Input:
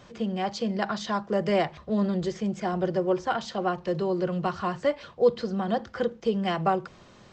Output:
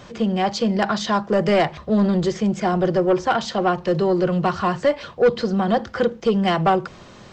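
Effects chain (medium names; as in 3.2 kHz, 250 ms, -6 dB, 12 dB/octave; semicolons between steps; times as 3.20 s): saturation -18.5 dBFS, distortion -15 dB; trim +9 dB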